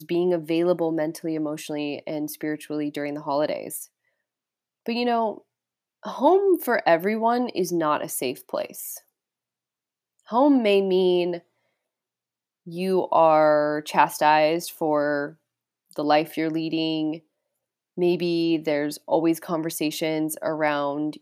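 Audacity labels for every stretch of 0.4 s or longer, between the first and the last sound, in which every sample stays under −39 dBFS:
3.850000	4.860000	silence
5.380000	6.030000	silence
8.980000	10.280000	silence
11.390000	12.670000	silence
15.310000	15.910000	silence
17.180000	17.980000	silence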